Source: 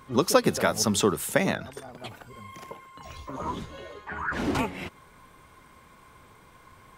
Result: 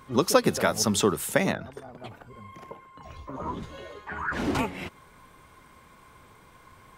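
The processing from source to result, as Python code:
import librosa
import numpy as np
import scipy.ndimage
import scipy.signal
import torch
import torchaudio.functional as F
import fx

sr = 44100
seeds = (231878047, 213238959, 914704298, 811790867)

y = fx.high_shelf(x, sr, hz=2500.0, db=-11.0, at=(1.52, 3.63))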